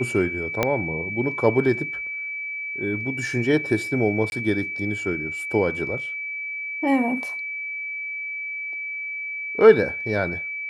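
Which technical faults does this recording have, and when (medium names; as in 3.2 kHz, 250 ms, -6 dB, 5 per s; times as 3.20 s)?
whine 2.3 kHz -28 dBFS
0.63 s: pop -6 dBFS
4.30–4.32 s: dropout 21 ms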